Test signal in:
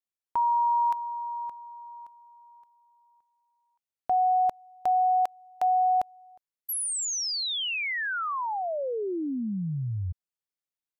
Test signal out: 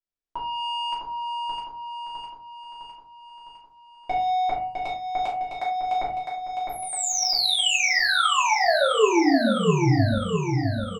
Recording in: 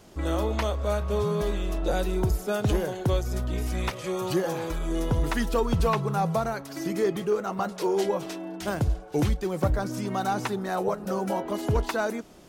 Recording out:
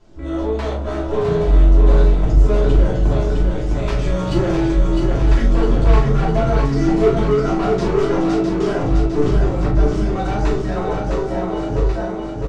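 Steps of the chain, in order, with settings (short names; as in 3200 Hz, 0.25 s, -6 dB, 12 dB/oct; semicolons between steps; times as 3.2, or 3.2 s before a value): ending faded out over 3.19 s; LPF 7500 Hz 24 dB/oct; tilt -1.5 dB/oct; de-hum 123.7 Hz, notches 6; AGC gain up to 13.5 dB; soft clip -15 dBFS; doubler 39 ms -7 dB; on a send: feedback echo 0.657 s, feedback 59%, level -4.5 dB; on the sum: shoebox room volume 130 m³, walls furnished, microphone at 2.9 m; gain -9 dB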